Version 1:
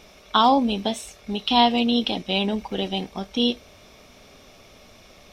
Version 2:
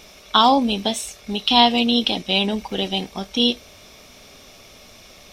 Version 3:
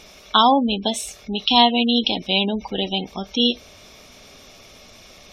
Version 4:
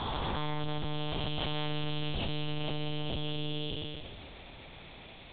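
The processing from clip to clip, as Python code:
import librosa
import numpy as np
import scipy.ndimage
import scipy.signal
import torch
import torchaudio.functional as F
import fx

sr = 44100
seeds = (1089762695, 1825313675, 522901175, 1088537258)

y1 = fx.high_shelf(x, sr, hz=2900.0, db=7.5)
y1 = F.gain(torch.from_numpy(y1), 1.5).numpy()
y2 = fx.spec_gate(y1, sr, threshold_db=-25, keep='strong')
y3 = fx.spec_blur(y2, sr, span_ms=748.0)
y3 = np.clip(10.0 ** (31.0 / 20.0) * y3, -1.0, 1.0) / 10.0 ** (31.0 / 20.0)
y3 = fx.lpc_monotone(y3, sr, seeds[0], pitch_hz=150.0, order=8)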